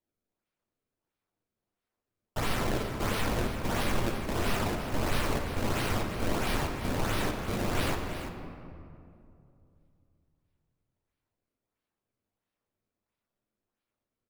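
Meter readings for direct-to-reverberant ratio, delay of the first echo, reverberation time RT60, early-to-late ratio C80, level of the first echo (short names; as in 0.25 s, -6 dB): 2.0 dB, 0.34 s, 2.5 s, 4.5 dB, -10.5 dB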